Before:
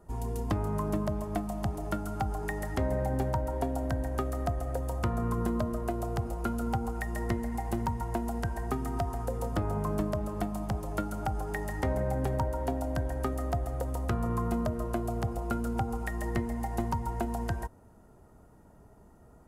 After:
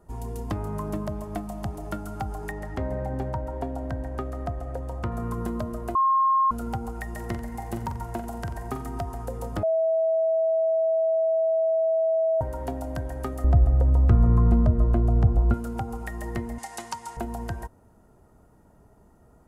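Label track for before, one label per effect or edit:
2.510000	5.120000	low-pass 2.8 kHz 6 dB/octave
5.950000	6.510000	bleep 1.07 kHz -17.5 dBFS
7.100000	8.850000	flutter echo walls apart 7.6 m, dies away in 0.35 s
9.630000	12.410000	bleep 649 Hz -19.5 dBFS
13.440000	15.540000	RIAA curve playback
16.580000	17.170000	frequency weighting ITU-R 468

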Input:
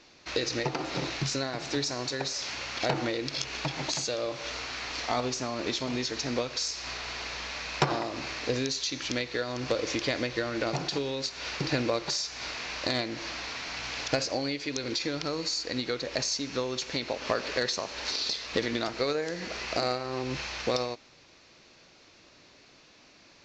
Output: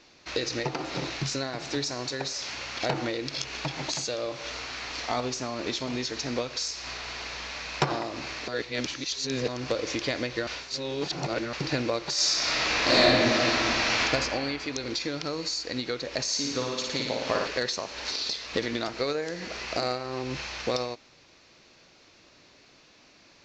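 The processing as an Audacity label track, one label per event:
8.480000	9.480000	reverse
10.470000	11.530000	reverse
12.130000	13.990000	reverb throw, RT60 2.5 s, DRR -11.5 dB
16.230000	17.470000	flutter echo walls apart 9.7 m, dies away in 1.1 s

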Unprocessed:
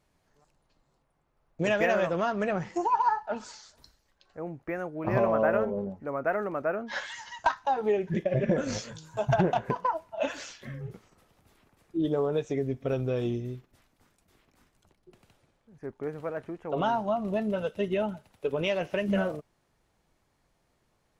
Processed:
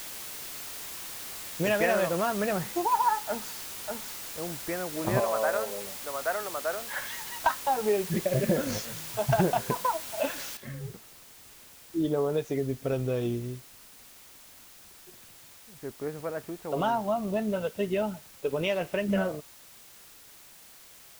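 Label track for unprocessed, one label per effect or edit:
3.280000	4.420000	echo throw 590 ms, feedback 10%, level -4 dB
5.200000	7.060000	three-band isolator lows -17 dB, under 490 Hz, highs -21 dB, over 3.2 kHz
10.570000	10.570000	noise floor step -40 dB -52 dB

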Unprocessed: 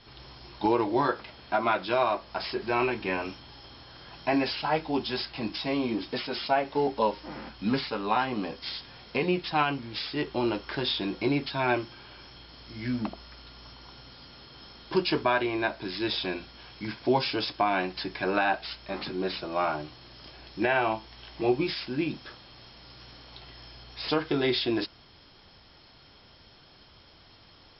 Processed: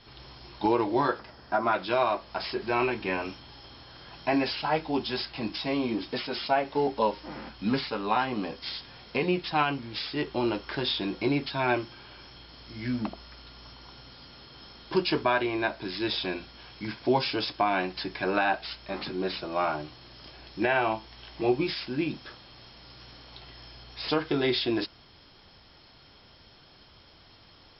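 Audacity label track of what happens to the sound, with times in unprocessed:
1.190000	1.730000	time-frequency box 2–4.4 kHz -8 dB

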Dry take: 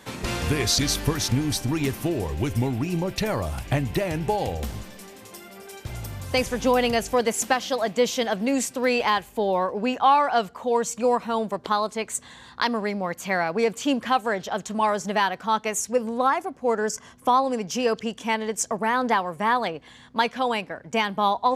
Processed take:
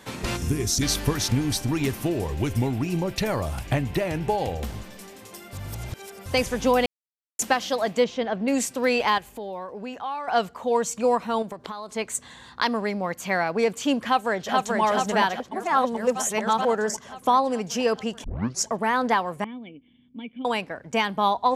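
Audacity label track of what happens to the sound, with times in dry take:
0.370000	0.820000	time-frequency box 430–5100 Hz -11 dB
3.740000	4.910000	tone controls bass -1 dB, treble -3 dB
5.530000	6.260000	reverse
6.860000	7.390000	mute
8.040000	8.480000	tape spacing loss at 10 kHz 25 dB
9.180000	10.280000	compression 2:1, threshold -39 dBFS
11.420000	11.900000	compression 12:1, threshold -30 dBFS
14.030000	14.810000	echo throw 430 ms, feedback 70%, level -2 dB
15.400000	16.650000	reverse
18.240000	18.240000	tape start 0.41 s
19.440000	20.450000	cascade formant filter i

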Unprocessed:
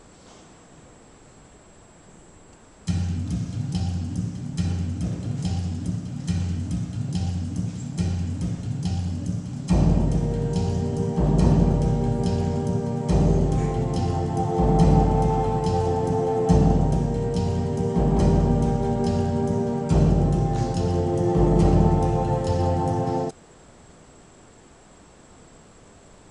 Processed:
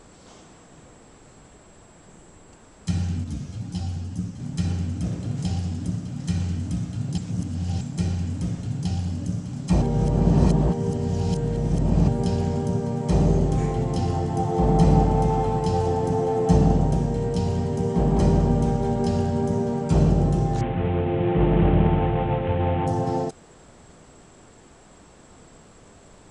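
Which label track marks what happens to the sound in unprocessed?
3.240000	4.400000	three-phase chorus
7.180000	7.810000	reverse
9.820000	12.080000	reverse
20.610000	22.870000	CVSD coder 16 kbps

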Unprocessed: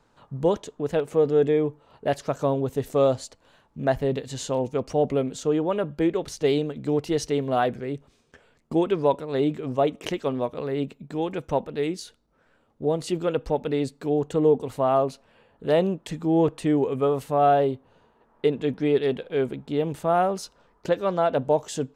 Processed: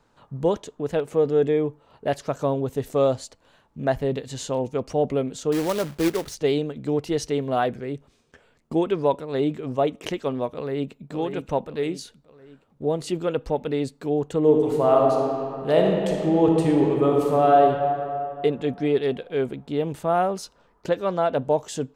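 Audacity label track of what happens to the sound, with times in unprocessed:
5.520000	6.350000	companded quantiser 4-bit
10.530000	11.100000	echo throw 570 ms, feedback 45%, level -7.5 dB
14.390000	17.630000	reverb throw, RT60 2.5 s, DRR -0.5 dB

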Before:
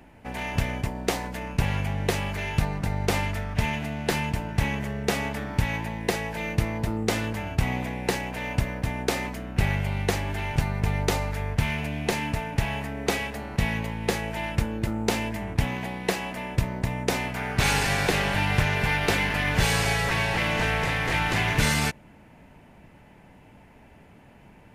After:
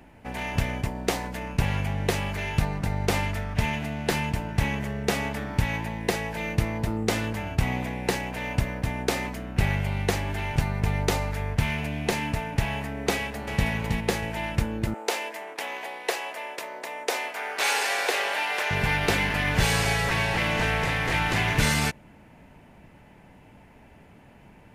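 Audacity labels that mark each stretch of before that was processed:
13.150000	13.680000	echo throw 320 ms, feedback 25%, level -4.5 dB
14.940000	18.710000	high-pass 420 Hz 24 dB/octave

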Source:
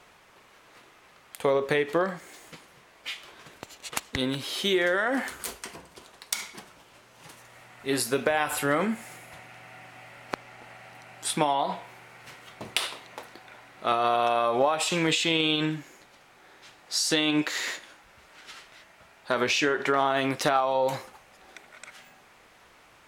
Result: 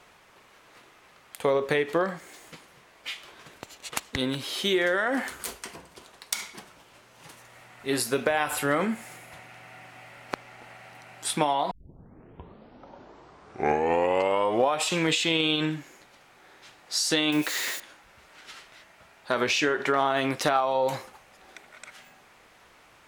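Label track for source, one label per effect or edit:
11.710000	11.710000	tape start 3.14 s
17.320000	17.800000	zero-crossing glitches of -29.5 dBFS

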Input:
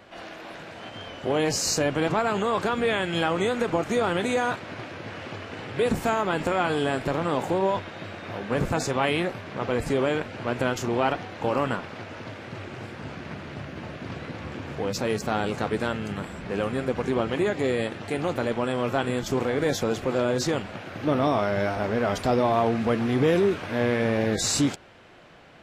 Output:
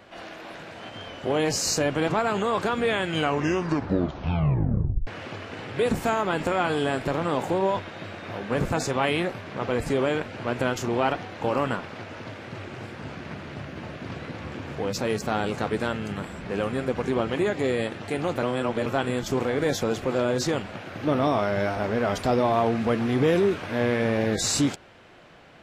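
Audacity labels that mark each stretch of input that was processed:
3.070000	3.070000	tape stop 2.00 s
18.430000	18.860000	reverse

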